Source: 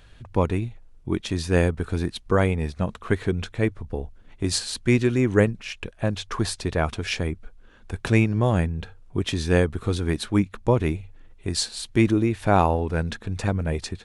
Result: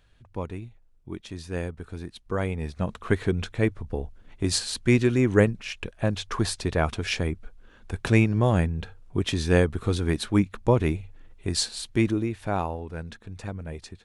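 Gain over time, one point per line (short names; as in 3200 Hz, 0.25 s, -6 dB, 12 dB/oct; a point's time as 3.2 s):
2.09 s -11 dB
3 s -0.5 dB
11.68 s -0.5 dB
12.75 s -10.5 dB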